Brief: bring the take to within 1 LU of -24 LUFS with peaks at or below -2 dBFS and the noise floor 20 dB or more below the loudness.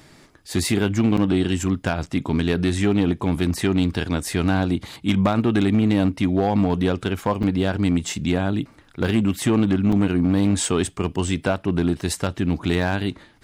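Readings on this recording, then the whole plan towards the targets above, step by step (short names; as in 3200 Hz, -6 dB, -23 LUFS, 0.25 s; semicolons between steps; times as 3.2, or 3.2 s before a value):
clipped 1.0%; flat tops at -11.5 dBFS; dropouts 4; longest dropout 4.8 ms; loudness -21.5 LUFS; peak -11.5 dBFS; loudness target -24.0 LUFS
-> clip repair -11.5 dBFS; interpolate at 1.17/7.43/9.92/12.01, 4.8 ms; gain -2.5 dB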